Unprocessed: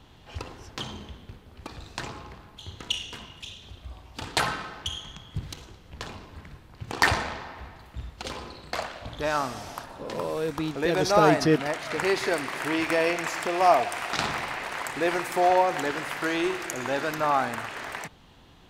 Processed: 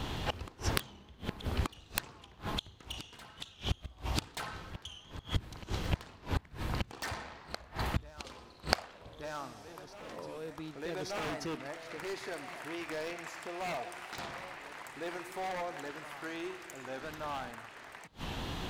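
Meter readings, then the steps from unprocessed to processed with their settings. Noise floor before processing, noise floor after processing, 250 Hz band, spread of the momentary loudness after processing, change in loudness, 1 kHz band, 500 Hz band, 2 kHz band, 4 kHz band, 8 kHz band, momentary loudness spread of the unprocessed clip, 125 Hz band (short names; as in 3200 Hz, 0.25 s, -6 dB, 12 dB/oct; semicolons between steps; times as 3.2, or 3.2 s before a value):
-53 dBFS, -57 dBFS, -11.5 dB, 10 LU, -13.0 dB, -14.0 dB, -14.5 dB, -12.0 dB, -8.0 dB, -8.5 dB, 21 LU, -3.5 dB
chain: wavefolder -17.5 dBFS; flipped gate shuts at -34 dBFS, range -29 dB; reverse echo 1.18 s -13 dB; record warp 45 rpm, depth 100 cents; gain +15 dB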